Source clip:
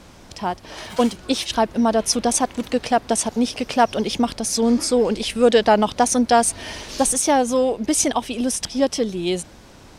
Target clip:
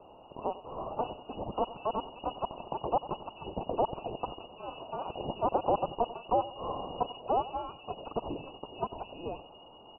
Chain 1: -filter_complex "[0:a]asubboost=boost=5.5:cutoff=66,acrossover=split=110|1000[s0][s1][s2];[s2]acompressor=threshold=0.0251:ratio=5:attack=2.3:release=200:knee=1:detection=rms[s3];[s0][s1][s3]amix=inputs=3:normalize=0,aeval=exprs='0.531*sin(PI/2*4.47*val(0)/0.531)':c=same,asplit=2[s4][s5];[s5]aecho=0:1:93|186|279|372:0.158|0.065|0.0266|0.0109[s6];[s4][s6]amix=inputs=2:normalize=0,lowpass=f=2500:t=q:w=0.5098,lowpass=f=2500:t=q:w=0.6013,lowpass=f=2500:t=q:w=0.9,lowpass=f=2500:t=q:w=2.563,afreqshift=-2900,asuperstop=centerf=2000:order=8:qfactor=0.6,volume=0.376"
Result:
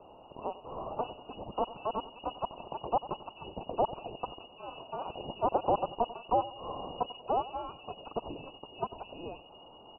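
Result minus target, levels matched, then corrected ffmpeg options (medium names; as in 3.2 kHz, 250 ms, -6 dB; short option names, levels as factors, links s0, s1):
compression: peak gain reduction +6 dB
-filter_complex "[0:a]asubboost=boost=5.5:cutoff=66,acrossover=split=110|1000[s0][s1][s2];[s2]acompressor=threshold=0.0596:ratio=5:attack=2.3:release=200:knee=1:detection=rms[s3];[s0][s1][s3]amix=inputs=3:normalize=0,aeval=exprs='0.531*sin(PI/2*4.47*val(0)/0.531)':c=same,asplit=2[s4][s5];[s5]aecho=0:1:93|186|279|372:0.158|0.065|0.0266|0.0109[s6];[s4][s6]amix=inputs=2:normalize=0,lowpass=f=2500:t=q:w=0.5098,lowpass=f=2500:t=q:w=0.6013,lowpass=f=2500:t=q:w=0.9,lowpass=f=2500:t=q:w=2.563,afreqshift=-2900,asuperstop=centerf=2000:order=8:qfactor=0.6,volume=0.376"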